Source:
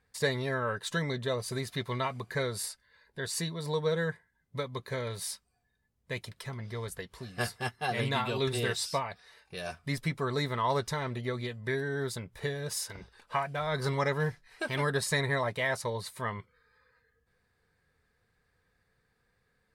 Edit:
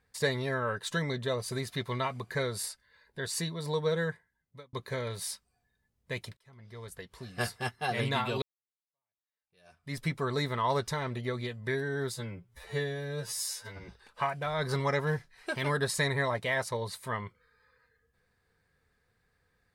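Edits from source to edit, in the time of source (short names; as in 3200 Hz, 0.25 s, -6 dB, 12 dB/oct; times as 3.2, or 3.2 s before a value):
4.03–4.73 fade out
6.37–7.38 fade in
8.42–10 fade in exponential
12.14–13.01 stretch 2×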